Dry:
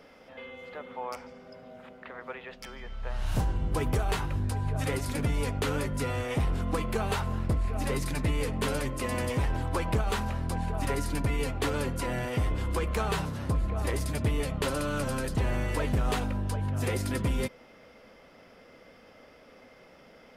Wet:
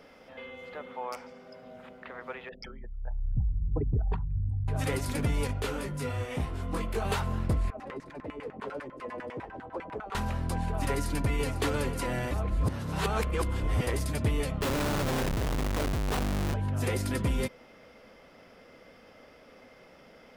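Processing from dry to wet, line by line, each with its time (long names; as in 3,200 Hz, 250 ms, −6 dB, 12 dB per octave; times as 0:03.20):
0:00.90–0:01.64: low-shelf EQ 100 Hz −11.5 dB
0:02.49–0:04.68: spectral envelope exaggerated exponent 3
0:05.47–0:07.05: micro pitch shift up and down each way 23 cents
0:07.70–0:10.15: auto-filter band-pass saw down 10 Hz 260–1,900 Hz
0:10.89–0:11.53: delay throw 500 ms, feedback 50%, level −12.5 dB
0:12.31–0:13.87: reverse
0:14.61–0:16.54: comparator with hysteresis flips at −32.5 dBFS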